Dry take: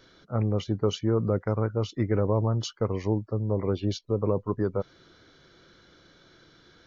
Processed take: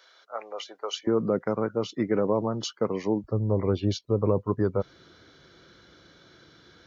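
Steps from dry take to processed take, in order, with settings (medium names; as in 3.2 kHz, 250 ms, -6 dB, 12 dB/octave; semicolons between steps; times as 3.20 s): high-pass 600 Hz 24 dB/octave, from 1.07 s 160 Hz, from 3.24 s 42 Hz; trim +2 dB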